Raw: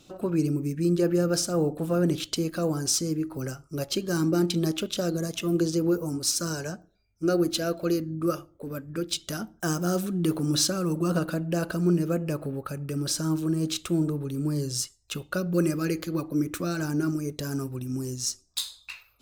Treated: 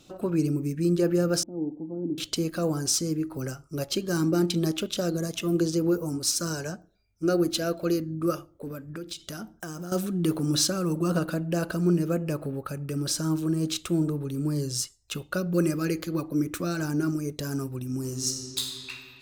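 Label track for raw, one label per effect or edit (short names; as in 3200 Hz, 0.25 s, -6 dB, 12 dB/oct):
1.430000	2.180000	vocal tract filter u
8.690000	9.920000	compressor 12:1, threshold -32 dBFS
17.980000	18.910000	reverb throw, RT60 2.6 s, DRR 1.5 dB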